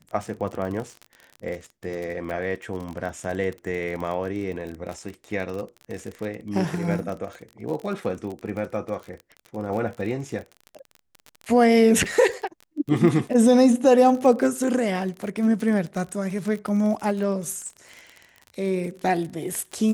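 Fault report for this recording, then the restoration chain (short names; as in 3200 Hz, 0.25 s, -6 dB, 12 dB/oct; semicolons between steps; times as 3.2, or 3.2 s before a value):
crackle 31/s -30 dBFS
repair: de-click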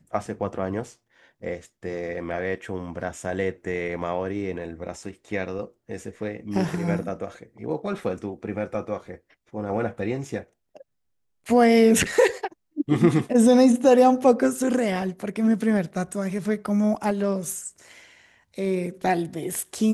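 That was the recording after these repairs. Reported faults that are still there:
none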